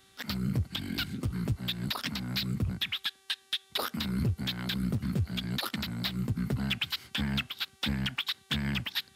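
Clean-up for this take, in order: de-hum 386.6 Hz, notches 31

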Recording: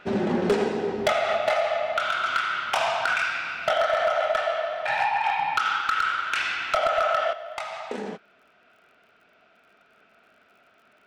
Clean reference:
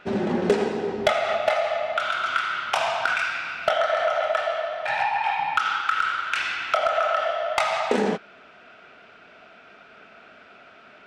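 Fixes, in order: clip repair -15.5 dBFS; de-click; gain 0 dB, from 7.33 s +10.5 dB

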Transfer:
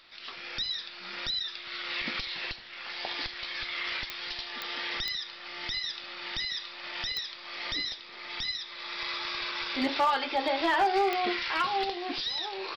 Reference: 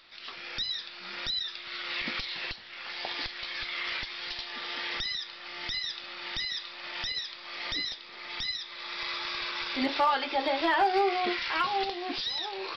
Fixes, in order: clip repair -19.5 dBFS; de-click; inverse comb 77 ms -18 dB

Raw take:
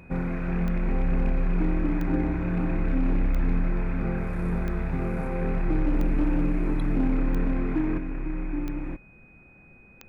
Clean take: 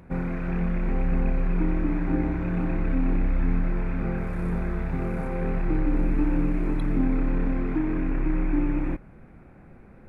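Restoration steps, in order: clip repair -17 dBFS; de-click; notch 2500 Hz, Q 30; gain correction +6 dB, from 7.98

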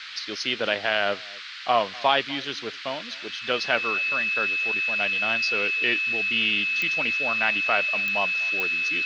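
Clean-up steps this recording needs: de-click; notch 2600 Hz, Q 30; noise print and reduce 30 dB; inverse comb 0.247 s -23 dB

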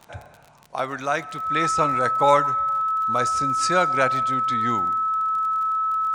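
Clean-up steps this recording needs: de-click; notch 1300 Hz, Q 30

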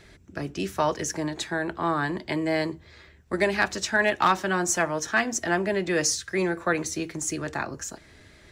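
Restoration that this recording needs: clip repair -11 dBFS

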